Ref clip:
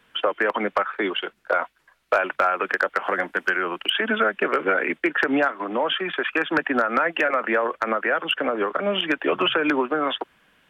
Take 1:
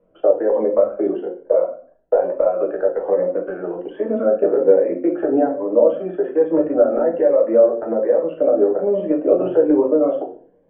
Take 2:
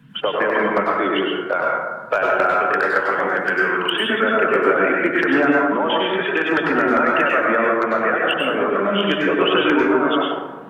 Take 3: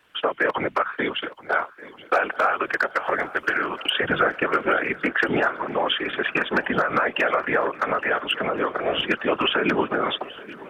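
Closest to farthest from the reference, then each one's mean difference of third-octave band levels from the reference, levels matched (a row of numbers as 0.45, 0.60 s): 3, 2, 1; 4.0, 6.5, 10.0 dB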